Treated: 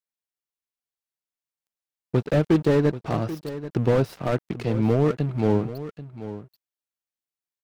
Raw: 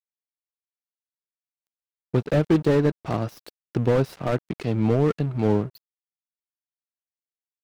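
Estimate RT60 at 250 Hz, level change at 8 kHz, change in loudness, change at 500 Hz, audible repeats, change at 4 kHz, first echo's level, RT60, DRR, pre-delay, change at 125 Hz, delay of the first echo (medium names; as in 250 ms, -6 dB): no reverb, no reading, 0.0 dB, 0.0 dB, 1, 0.0 dB, -13.5 dB, no reverb, no reverb, no reverb, 0.0 dB, 785 ms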